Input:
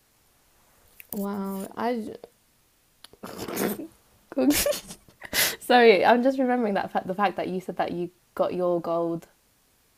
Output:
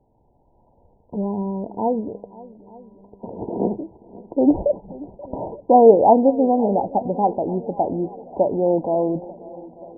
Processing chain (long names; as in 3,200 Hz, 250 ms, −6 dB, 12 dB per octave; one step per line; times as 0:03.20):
linear-phase brick-wall low-pass 1,000 Hz
feedback echo with a long and a short gap by turns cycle 888 ms, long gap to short 1.5 to 1, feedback 51%, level −20 dB
level +6 dB